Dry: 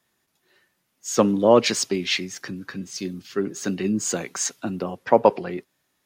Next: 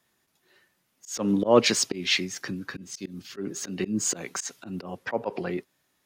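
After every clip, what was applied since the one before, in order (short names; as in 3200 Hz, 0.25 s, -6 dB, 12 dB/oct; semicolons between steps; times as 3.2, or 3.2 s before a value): auto swell 0.15 s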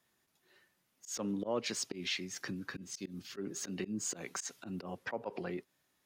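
compressor 2.5:1, threshold -32 dBFS, peak gain reduction 13.5 dB; gain -5 dB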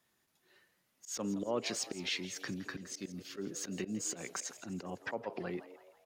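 frequency-shifting echo 0.166 s, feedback 47%, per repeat +100 Hz, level -15 dB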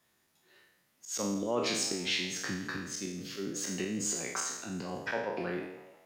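spectral trails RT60 0.77 s; gain +2 dB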